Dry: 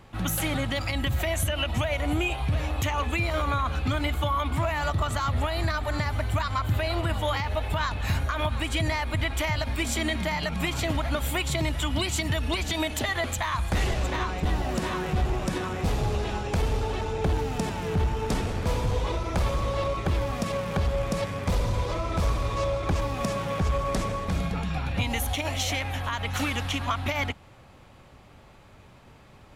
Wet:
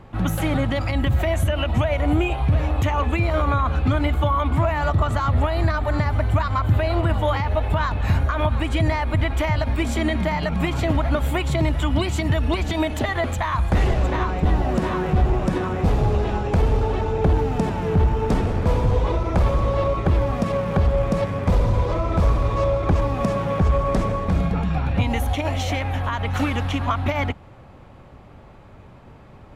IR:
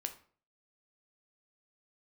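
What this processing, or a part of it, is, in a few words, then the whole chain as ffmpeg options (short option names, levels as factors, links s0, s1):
through cloth: -af "highshelf=f=2300:g=-14,volume=2.37"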